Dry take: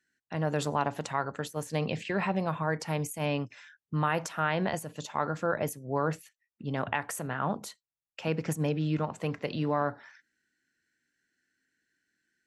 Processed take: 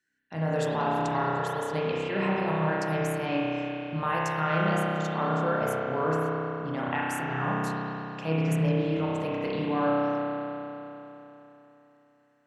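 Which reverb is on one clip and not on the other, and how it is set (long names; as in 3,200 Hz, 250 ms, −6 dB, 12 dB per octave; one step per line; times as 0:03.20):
spring reverb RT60 3.4 s, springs 31 ms, chirp 80 ms, DRR −6.5 dB
level −3.5 dB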